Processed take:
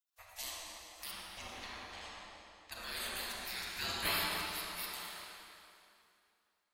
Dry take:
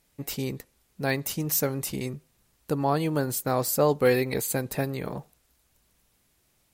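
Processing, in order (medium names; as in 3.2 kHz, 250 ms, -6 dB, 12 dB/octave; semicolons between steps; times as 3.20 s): spectral gate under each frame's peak -30 dB weak; 1.11–2.72 s: distance through air 140 m; 4.73–5.15 s: high-pass 170 Hz 24 dB/octave; tape echo 263 ms, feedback 45%, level -5 dB, low-pass 1.1 kHz; reverberation RT60 2.5 s, pre-delay 28 ms, DRR -3.5 dB; trim +3.5 dB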